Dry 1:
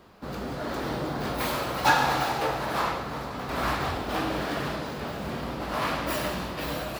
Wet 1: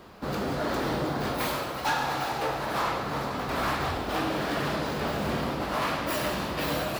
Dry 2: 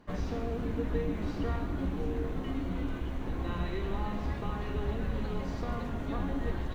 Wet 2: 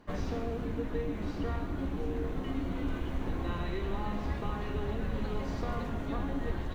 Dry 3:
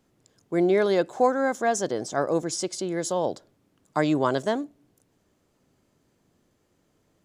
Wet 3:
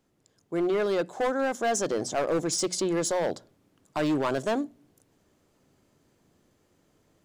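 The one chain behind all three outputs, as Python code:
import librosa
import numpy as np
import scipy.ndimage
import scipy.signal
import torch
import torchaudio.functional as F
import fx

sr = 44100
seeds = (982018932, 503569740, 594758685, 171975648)

y = fx.hum_notches(x, sr, base_hz=60, count=4)
y = fx.rider(y, sr, range_db=5, speed_s=0.5)
y = np.clip(y, -10.0 ** (-21.5 / 20.0), 10.0 ** (-21.5 / 20.0))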